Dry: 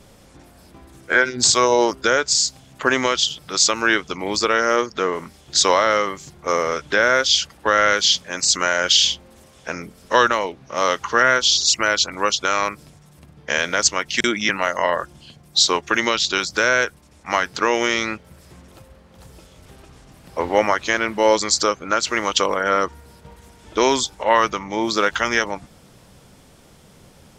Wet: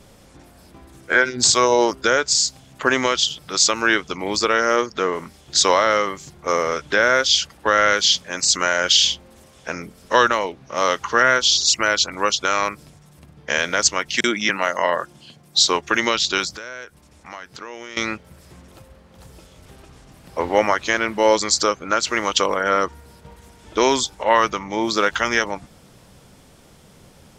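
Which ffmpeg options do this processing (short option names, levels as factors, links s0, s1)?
-filter_complex "[0:a]asettb=1/sr,asplit=3[s0][s1][s2];[s0]atrim=end=14.174[s3];[s1]atrim=start=14.17:end=15.58,asetpts=PTS-STARTPTS,afade=t=in:d=0.004:c=qsin,afade=t=out:st=1.406:d=0.004:c=qsin,highpass=130[s4];[s2]atrim=start=15.576[s5];[s3][s4]acrossfade=d=0.004:c1=hsin:c2=qsin[s6];[s6][s5]acrossfade=d=0.004:c1=qsin:c2=hsin,asettb=1/sr,asplit=3[s7][s8][s9];[s7]atrim=end=16.564[s10];[s8]atrim=start=16.56:end=17.97,asetpts=PTS-STARTPTS,afade=t=in:d=0.004:c=qsin,afade=t=out:st=1.406:d=0.004:c=qsin,acompressor=threshold=0.0112:ratio=2.5:attack=3.2:release=140:knee=1:detection=peak[s11];[s9]atrim=start=17.966[s12];[s10][s11]acrossfade=d=0.004:c1=hsin:c2=qsin[s13];[s13][s12]acrossfade=d=0.004:c1=qsin:c2=hsin"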